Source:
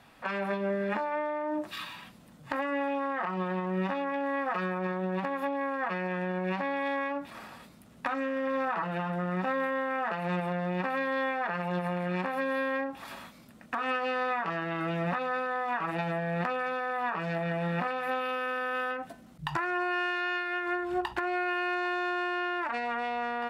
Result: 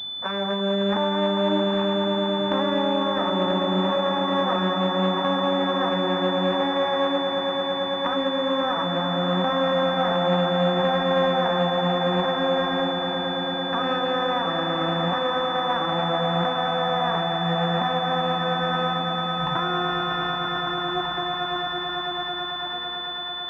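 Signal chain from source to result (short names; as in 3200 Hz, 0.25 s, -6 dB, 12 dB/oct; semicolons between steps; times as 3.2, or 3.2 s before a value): ending faded out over 4.48 s; swelling echo 0.111 s, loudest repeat 8, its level -10 dB; pulse-width modulation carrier 3500 Hz; gain +5.5 dB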